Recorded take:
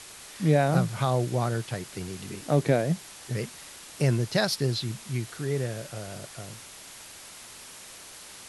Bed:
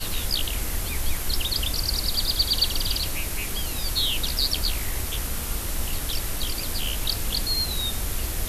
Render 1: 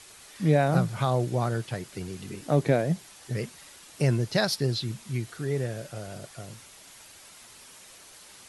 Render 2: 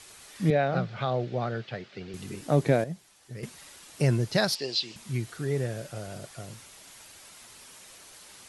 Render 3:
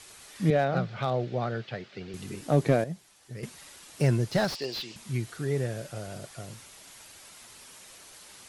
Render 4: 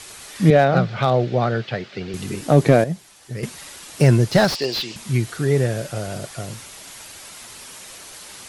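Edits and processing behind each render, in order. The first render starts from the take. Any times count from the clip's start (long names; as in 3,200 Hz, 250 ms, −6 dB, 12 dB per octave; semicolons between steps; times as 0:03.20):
broadband denoise 6 dB, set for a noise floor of −46 dBFS
0:00.50–0:02.14: loudspeaker in its box 140–4,300 Hz, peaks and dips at 160 Hz −7 dB, 310 Hz −8 dB, 980 Hz −8 dB; 0:02.84–0:03.43: clip gain −10 dB; 0:04.55–0:04.96: loudspeaker in its box 440–7,300 Hz, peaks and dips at 1,400 Hz −10 dB, 2,800 Hz +9 dB, 4,800 Hz +9 dB
slew-rate limiting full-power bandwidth 91 Hz
level +10.5 dB; brickwall limiter −2 dBFS, peak gain reduction 2.5 dB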